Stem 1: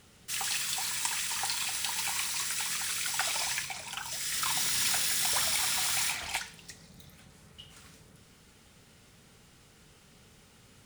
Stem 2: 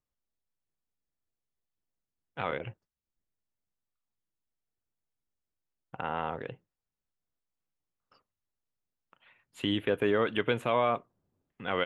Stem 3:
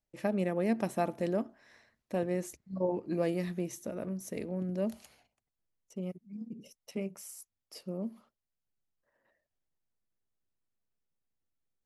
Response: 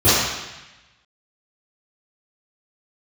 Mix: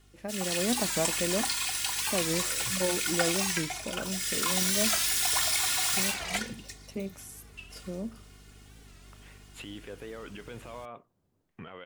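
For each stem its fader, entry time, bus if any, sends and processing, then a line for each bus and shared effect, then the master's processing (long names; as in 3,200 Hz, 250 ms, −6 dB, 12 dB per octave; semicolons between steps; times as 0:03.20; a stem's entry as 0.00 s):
−8.5 dB, 0.00 s, no send, comb filter 2.8 ms, depth 88%; mains hum 50 Hz, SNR 21 dB
−4.5 dB, 0.00 s, no send, downward compressor 3 to 1, threshold −37 dBFS, peak gain reduction 11.5 dB; brickwall limiter −36 dBFS, peak gain reduction 15 dB
−7.5 dB, 0.00 s, no send, no processing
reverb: not used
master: automatic gain control gain up to 8 dB; wow of a warped record 45 rpm, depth 160 cents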